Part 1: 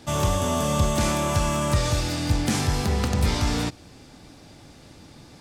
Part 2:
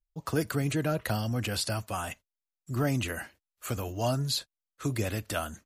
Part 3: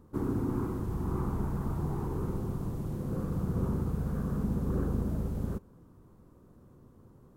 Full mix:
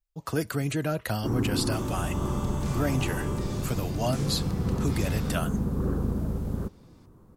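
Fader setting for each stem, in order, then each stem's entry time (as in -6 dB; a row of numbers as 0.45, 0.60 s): -15.5, +0.5, +3.0 dB; 1.65, 0.00, 1.10 s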